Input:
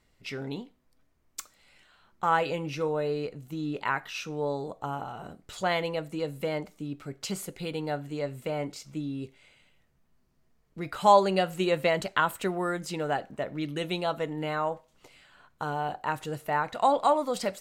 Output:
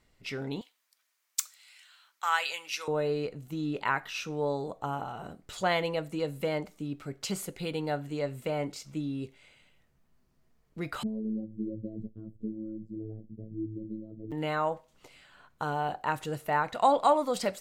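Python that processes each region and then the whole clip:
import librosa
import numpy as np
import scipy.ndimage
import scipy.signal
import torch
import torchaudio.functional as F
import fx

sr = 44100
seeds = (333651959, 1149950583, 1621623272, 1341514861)

y = fx.chain(x, sr, fx.highpass(hz=1300.0, slope=12),
    fx.high_shelf(hz=2600.0, db=10.0), at=(0.61, 2.88))
y = fx.chain(y, sr, fx.cheby2_lowpass(hz=850.0, order=4, stop_db=50),
    fx.low_shelf(hz=110.0, db=11.5),
    fx.robotise(hz=109.0), at=(11.03, 14.32))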